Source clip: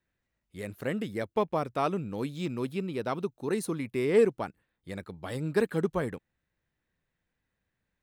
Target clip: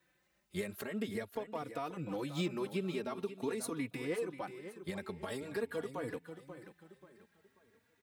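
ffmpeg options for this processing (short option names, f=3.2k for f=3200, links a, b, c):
-filter_complex "[0:a]highpass=f=280:p=1,acompressor=threshold=-42dB:ratio=6,alimiter=level_in=13dB:limit=-24dB:level=0:latency=1:release=179,volume=-13dB,asplit=2[a][b];[b]aecho=0:1:536|1072|1608|2144:0.266|0.0958|0.0345|0.0124[c];[a][c]amix=inputs=2:normalize=0,asplit=2[d][e];[e]adelay=3.5,afreqshift=0.46[f];[d][f]amix=inputs=2:normalize=1,volume=12.5dB"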